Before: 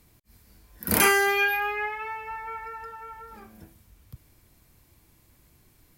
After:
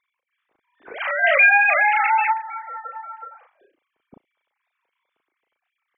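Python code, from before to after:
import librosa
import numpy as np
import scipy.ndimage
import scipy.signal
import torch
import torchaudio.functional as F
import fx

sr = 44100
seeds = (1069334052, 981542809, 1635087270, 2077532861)

y = fx.sine_speech(x, sr)
y = fx.doubler(y, sr, ms=36.0, db=-3.5)
y = fx.env_flatten(y, sr, amount_pct=70, at=(1.22, 2.32), fade=0.02)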